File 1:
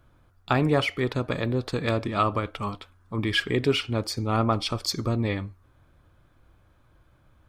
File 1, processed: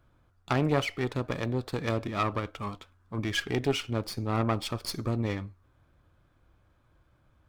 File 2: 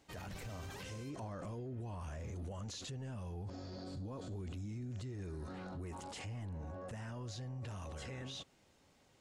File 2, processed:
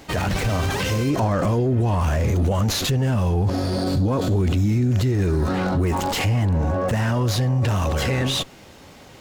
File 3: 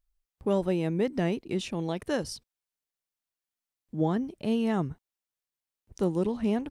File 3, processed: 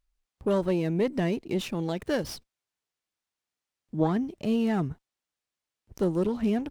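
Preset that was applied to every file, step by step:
added harmonics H 4 -16 dB, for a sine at -7 dBFS; running maximum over 3 samples; normalise peaks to -12 dBFS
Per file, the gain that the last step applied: -4.5, +24.0, +2.5 dB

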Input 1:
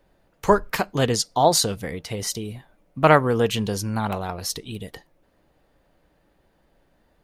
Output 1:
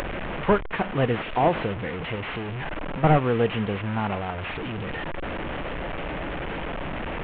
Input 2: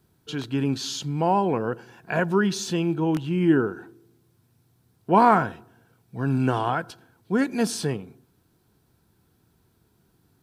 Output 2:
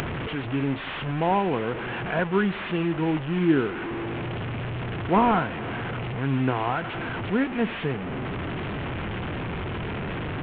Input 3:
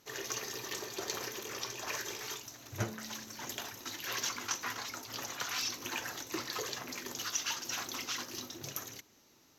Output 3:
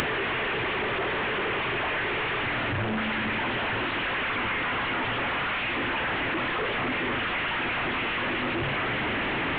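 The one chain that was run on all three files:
delta modulation 16 kbps, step -24.5 dBFS; upward compressor, threshold -27 dBFS; match loudness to -27 LUFS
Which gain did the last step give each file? -1.5, -1.5, +2.0 dB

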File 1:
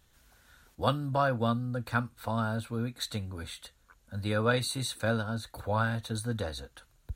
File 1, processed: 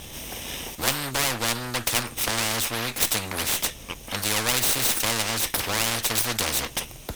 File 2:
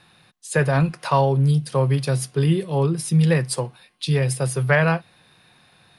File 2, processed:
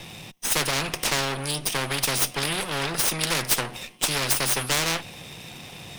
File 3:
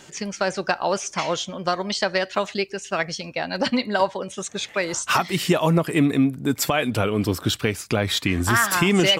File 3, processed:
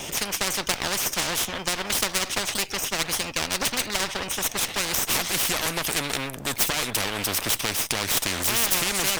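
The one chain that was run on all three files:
minimum comb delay 0.35 ms; spectral compressor 4:1; match loudness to -24 LUFS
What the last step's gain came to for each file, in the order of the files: +12.5, +2.5, +2.0 dB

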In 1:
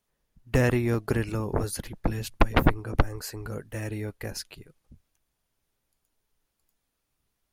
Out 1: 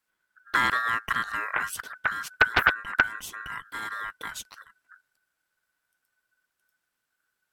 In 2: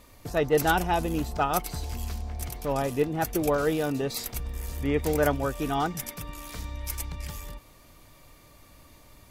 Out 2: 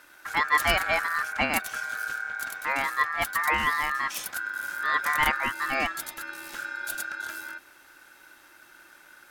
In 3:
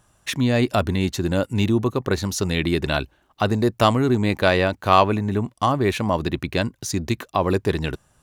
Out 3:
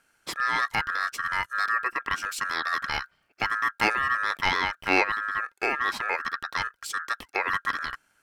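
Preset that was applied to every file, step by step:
ring modulator 1500 Hz; match loudness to -27 LUFS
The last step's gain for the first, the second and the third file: +1.0, +2.5, -4.0 dB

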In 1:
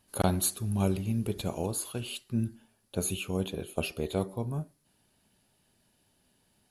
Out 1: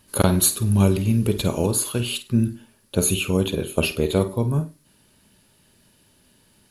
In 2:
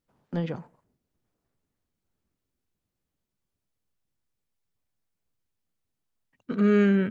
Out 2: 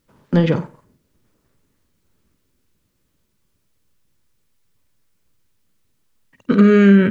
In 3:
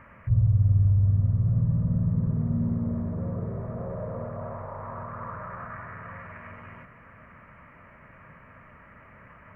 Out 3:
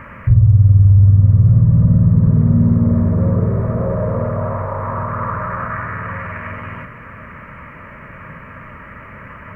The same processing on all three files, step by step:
bell 740 Hz -11 dB 0.23 oct; compressor, threshold -23 dBFS; on a send: flutter echo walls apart 8.6 m, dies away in 0.24 s; on the sum: normalise peaks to -1.5 dBFS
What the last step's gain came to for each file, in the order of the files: +11.5, +15.5, +15.5 dB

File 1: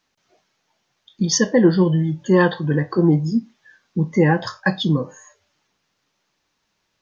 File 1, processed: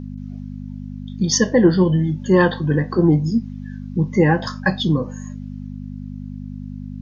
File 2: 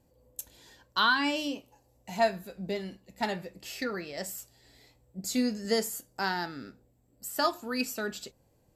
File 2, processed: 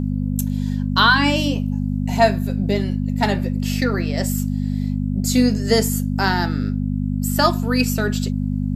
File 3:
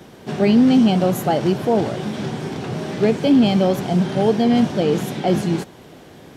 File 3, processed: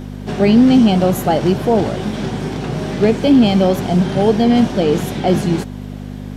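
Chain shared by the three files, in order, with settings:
buzz 50 Hz, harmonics 5, -32 dBFS 0 dB/oct; normalise peaks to -2 dBFS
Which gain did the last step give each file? +0.5, +10.0, +3.5 dB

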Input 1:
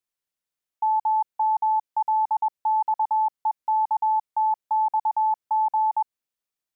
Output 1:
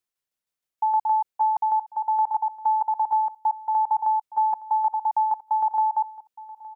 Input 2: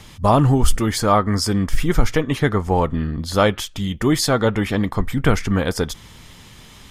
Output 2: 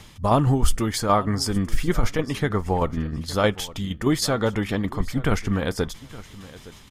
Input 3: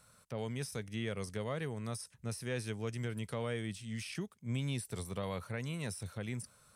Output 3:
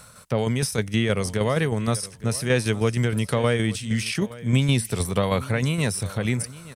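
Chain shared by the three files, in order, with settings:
tremolo saw down 6.4 Hz, depth 50%; feedback echo 0.866 s, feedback 16%, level -18.5 dB; match loudness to -24 LUFS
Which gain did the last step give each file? +2.5, -2.0, +18.0 dB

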